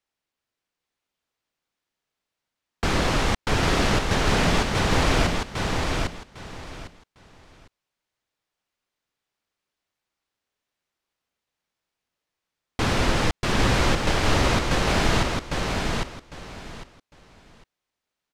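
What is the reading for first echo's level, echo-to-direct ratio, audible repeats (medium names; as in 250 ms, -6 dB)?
-3.5 dB, -3.5 dB, 3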